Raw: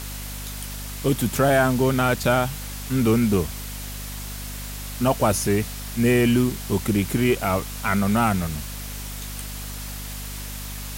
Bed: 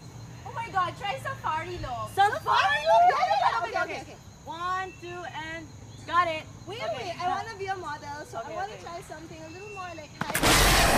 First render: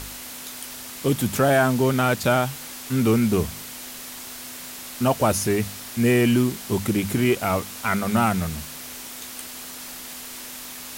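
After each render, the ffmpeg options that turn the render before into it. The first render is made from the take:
-af "bandreject=f=50:t=h:w=4,bandreject=f=100:t=h:w=4,bandreject=f=150:t=h:w=4,bandreject=f=200:t=h:w=4"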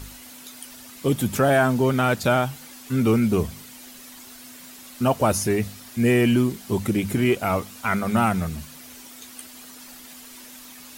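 -af "afftdn=nr=9:nf=-38"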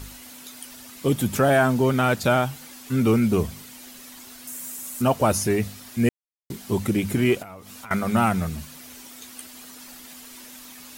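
-filter_complex "[0:a]asettb=1/sr,asplit=3[a][b][c];[a]atrim=end=4.474[d];[b]atrim=start=4.47:end=5.02,asetpts=PTS-STARTPTS,afade=t=in:d=0.004:c=qsin,afade=t=out:st=0.546:d=0.004:c=qsin,highshelf=f=5.9k:t=q:w=1.5:g=9[e];[c]atrim=start=5.016[f];[d][e]acrossfade=d=0.004:c1=hsin:c2=qsin[g];[g][f]acrossfade=d=0.004:c1=qsin:c2=hsin,asettb=1/sr,asplit=3[h][i][j];[h]atrim=end=7.424[k];[i]atrim=start=7.42:end=7.91,asetpts=PTS-STARTPTS,afade=t=in:d=0.004:c=qsin,afade=t=out:st=0.486:d=0.004:c=qsin,acompressor=threshold=-37dB:ratio=8:attack=3.2:release=140:knee=1:detection=peak[l];[j]atrim=start=7.906[m];[k][l]acrossfade=d=0.004:c1=hsin:c2=qsin[n];[n][m]acrossfade=d=0.004:c1=qsin:c2=hsin,asplit=3[o][p][q];[o]atrim=end=6.09,asetpts=PTS-STARTPTS,afade=t=out:st=6.086:d=0.004:c=hsin[r];[p]atrim=start=6.09:end=6.5,asetpts=PTS-STARTPTS,volume=0[s];[q]atrim=start=6.5,asetpts=PTS-STARTPTS,afade=t=in:d=0.004:c=hsin[t];[r][s][t]concat=n=3:v=0:a=1"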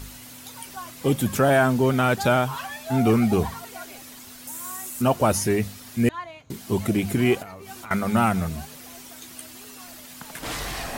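-filter_complex "[1:a]volume=-11.5dB[a];[0:a][a]amix=inputs=2:normalize=0"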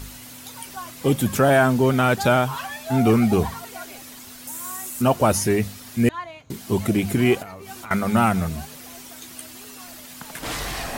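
-af "volume=2dB"

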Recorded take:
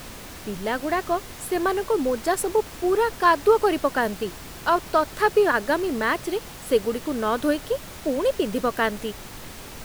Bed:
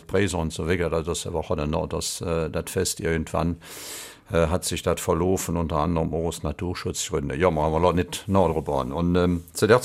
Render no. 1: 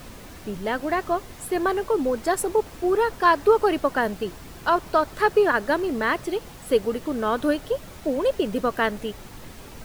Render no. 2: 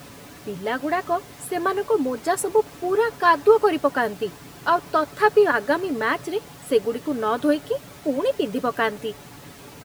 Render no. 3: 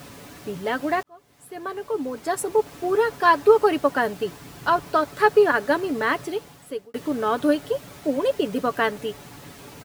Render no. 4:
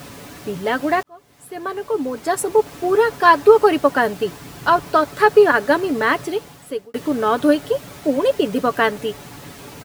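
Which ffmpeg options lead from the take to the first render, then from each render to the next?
-af "afftdn=nr=6:nf=-40"
-af "highpass=90,aecho=1:1:7:0.43"
-filter_complex "[0:a]asettb=1/sr,asplit=3[a][b][c];[a]atrim=end=4.394[d];[b]atrim=start=4.39:end=4.84,asetpts=PTS-STARTPTS,afade=t=in:d=0.004:c=qsin,afade=t=out:st=0.446:d=0.004:c=qsin,asubboost=boost=10:cutoff=230[e];[c]atrim=start=4.836[f];[d][e]acrossfade=d=0.004:c1=hsin:c2=qsin[g];[g][f]acrossfade=d=0.004:c1=qsin:c2=hsin,asplit=3[h][i][j];[h]atrim=end=1.03,asetpts=PTS-STARTPTS,afade=t=out:st=1.026:d=0.004:c=hsin[k];[i]atrim=start=1.03:end=6.94,asetpts=PTS-STARTPTS,afade=t=in:d=1.82,afade=t=out:st=5.18:d=0.73[l];[j]atrim=start=6.94,asetpts=PTS-STARTPTS,afade=t=in:d=0.004:c=hsin[m];[k][l][m]concat=n=3:v=0:a=1"
-af "volume=5dB,alimiter=limit=-1dB:level=0:latency=1"

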